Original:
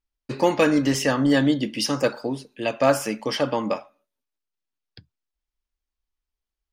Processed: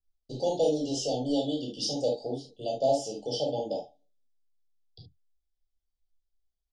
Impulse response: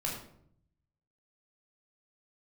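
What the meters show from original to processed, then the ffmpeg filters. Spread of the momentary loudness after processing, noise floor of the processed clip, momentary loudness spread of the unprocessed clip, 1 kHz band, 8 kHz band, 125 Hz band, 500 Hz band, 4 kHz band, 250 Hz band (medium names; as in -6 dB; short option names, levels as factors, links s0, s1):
9 LU, -83 dBFS, 11 LU, -9.0 dB, -6.5 dB, -10.0 dB, -5.0 dB, -5.5 dB, -10.5 dB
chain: -filter_complex "[0:a]lowpass=f=7300:w=0.5412,lowpass=f=7300:w=1.3066,aecho=1:1:2.6:0.33,acrossover=split=360[s0][s1];[s0]acompressor=threshold=0.0178:ratio=6[s2];[s2][s1]amix=inputs=2:normalize=0,asuperstop=centerf=1600:order=20:qfactor=0.72[s3];[1:a]atrim=start_sample=2205,atrim=end_sample=3528[s4];[s3][s4]afir=irnorm=-1:irlink=0,volume=0.473"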